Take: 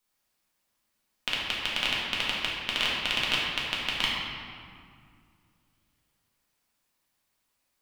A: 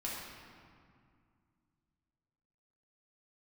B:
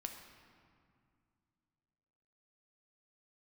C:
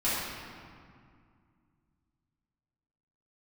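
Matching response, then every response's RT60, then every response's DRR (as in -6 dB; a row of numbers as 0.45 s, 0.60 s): A; 2.2 s, 2.3 s, 2.2 s; -6.0 dB, 3.5 dB, -12.0 dB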